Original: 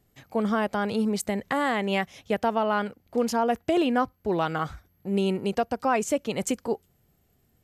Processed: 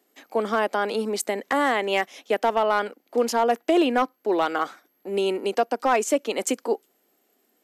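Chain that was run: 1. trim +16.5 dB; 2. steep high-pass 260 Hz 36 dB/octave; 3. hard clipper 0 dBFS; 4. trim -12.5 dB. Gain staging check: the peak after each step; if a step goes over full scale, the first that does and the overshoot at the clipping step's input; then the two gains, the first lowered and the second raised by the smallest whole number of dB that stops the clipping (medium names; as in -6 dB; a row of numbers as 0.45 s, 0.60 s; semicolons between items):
+4.0 dBFS, +5.5 dBFS, 0.0 dBFS, -12.5 dBFS; step 1, 5.5 dB; step 1 +10.5 dB, step 4 -6.5 dB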